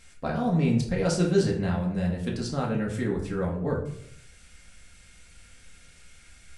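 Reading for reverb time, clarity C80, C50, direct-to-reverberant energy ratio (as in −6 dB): 0.70 s, 11.0 dB, 7.5 dB, −2.5 dB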